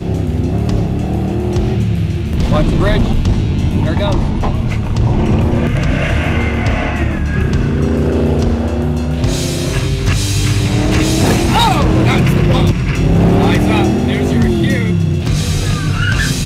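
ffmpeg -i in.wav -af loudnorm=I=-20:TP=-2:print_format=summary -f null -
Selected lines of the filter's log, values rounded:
Input Integrated:    -14.2 LUFS
Input True Peak:      -5.3 dBTP
Input LRA:             2.8 LU
Input Threshold:     -24.2 LUFS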